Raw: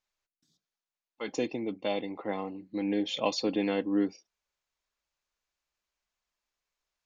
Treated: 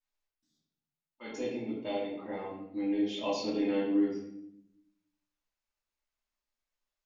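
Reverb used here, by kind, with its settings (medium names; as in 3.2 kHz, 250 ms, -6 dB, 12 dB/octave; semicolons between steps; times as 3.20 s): simulated room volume 200 m³, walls mixed, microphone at 2.7 m; trim -13.5 dB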